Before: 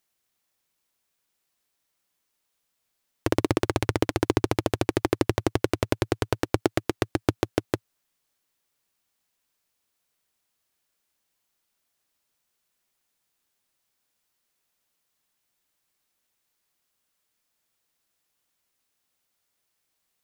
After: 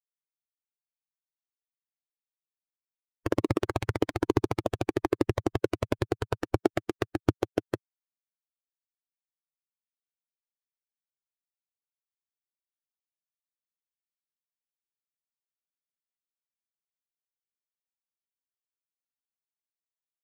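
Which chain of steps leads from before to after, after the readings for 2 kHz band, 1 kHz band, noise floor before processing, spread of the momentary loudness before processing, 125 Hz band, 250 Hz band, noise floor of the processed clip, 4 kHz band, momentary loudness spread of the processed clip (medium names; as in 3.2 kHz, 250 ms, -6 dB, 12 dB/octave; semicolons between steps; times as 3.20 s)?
-5.5 dB, -3.5 dB, -78 dBFS, 4 LU, -3.5 dB, -3.0 dB, under -85 dBFS, -8.0 dB, 5 LU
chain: expander on every frequency bin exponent 2; treble shelf 2.4 kHz -7.5 dB; trim +1.5 dB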